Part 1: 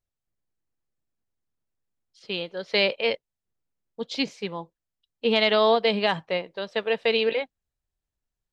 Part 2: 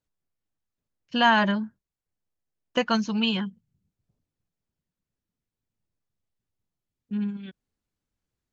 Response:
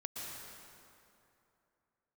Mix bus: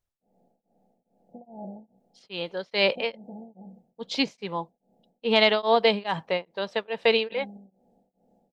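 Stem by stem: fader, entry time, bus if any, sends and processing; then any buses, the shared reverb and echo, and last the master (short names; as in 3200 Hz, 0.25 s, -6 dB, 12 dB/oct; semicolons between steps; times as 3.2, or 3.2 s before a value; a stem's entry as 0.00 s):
+2.0 dB, 0.00 s, no send, bell 910 Hz +4.5 dB 0.62 oct
-11.5 dB, 0.20 s, no send, per-bin compression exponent 0.4; Chebyshev low-pass 840 Hz, order 10; resonator 63 Hz, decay 0.27 s, harmonics all, mix 60%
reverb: off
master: beating tremolo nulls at 2.4 Hz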